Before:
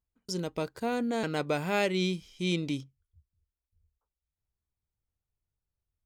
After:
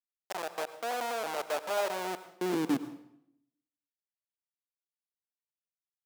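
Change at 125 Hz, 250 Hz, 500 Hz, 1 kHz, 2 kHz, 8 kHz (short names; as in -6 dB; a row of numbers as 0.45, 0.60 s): -13.5, -4.0, -2.0, +2.0, -3.5, +1.0 dB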